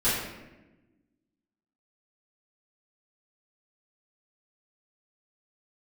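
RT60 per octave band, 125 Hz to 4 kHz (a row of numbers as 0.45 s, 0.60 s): 1.5 s, 1.7 s, 1.2 s, 0.95 s, 1.0 s, 0.70 s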